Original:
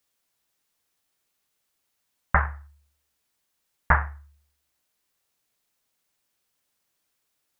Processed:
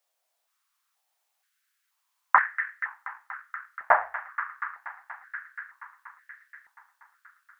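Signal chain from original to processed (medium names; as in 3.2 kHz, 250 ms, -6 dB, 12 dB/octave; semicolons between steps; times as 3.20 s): feedback echo behind a high-pass 239 ms, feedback 79%, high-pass 1.7 kHz, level -7.5 dB; step-sequenced high-pass 2.1 Hz 660–1800 Hz; trim -3 dB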